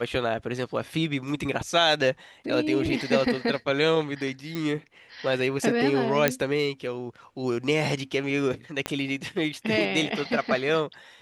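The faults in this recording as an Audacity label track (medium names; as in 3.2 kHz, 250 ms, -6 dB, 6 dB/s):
4.550000	4.550000	pop
6.280000	6.280000	pop -5 dBFS
8.860000	8.860000	pop -12 dBFS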